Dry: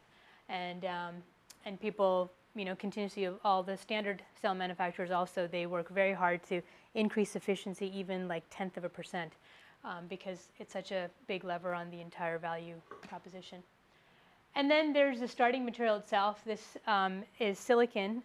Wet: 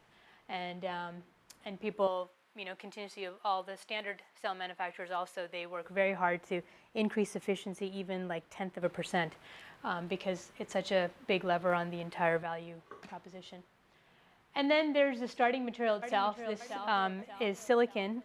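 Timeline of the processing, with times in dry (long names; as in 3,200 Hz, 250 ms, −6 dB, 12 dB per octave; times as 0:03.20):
0:02.07–0:05.85: high-pass filter 790 Hz 6 dB per octave
0:08.82–0:12.43: clip gain +7 dB
0:15.44–0:16.49: delay throw 580 ms, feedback 40%, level −10.5 dB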